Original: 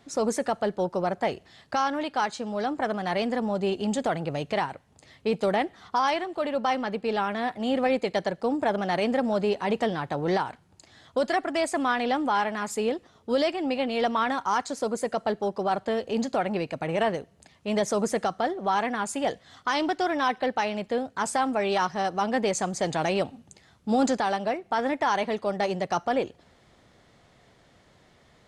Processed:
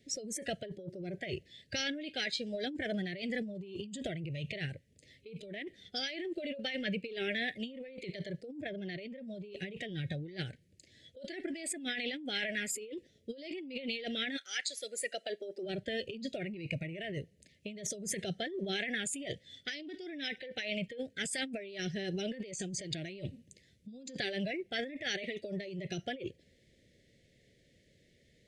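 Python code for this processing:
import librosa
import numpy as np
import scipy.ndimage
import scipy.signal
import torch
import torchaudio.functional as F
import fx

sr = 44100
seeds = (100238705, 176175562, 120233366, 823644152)

y = fx.peak_eq(x, sr, hz=9300.0, db=-9.0, octaves=0.82, at=(8.61, 9.21))
y = fx.highpass(y, sr, hz=fx.line((14.36, 1300.0), (15.65, 320.0)), slope=12, at=(14.36, 15.65), fade=0.02)
y = scipy.signal.sosfilt(scipy.signal.cheby1(3, 1.0, [550.0, 1900.0], 'bandstop', fs=sr, output='sos'), y)
y = fx.noise_reduce_blind(y, sr, reduce_db=13)
y = fx.over_compress(y, sr, threshold_db=-40.0, ratio=-1.0)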